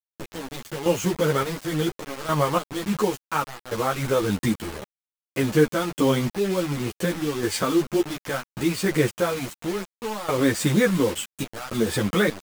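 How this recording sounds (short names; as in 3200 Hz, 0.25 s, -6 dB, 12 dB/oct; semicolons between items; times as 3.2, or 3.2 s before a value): random-step tremolo, depth 90%; a quantiser's noise floor 6-bit, dither none; a shimmering, thickened sound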